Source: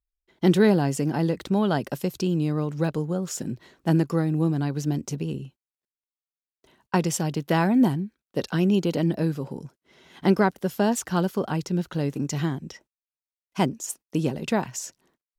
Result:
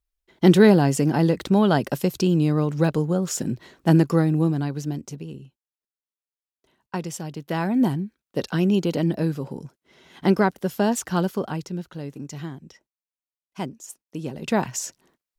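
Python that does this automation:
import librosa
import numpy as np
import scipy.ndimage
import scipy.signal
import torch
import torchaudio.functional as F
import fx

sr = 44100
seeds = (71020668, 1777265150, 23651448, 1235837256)

y = fx.gain(x, sr, db=fx.line((4.22, 4.5), (5.28, -6.5), (7.36, -6.5), (7.96, 1.0), (11.31, 1.0), (11.94, -7.5), (14.21, -7.5), (14.62, 4.0)))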